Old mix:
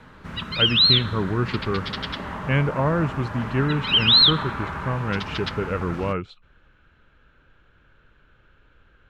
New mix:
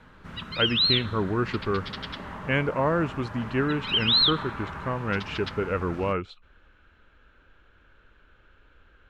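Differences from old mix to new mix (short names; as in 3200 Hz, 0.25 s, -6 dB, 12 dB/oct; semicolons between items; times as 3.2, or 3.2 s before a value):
speech: add bell 140 Hz -8.5 dB 0.74 oct; background -6.0 dB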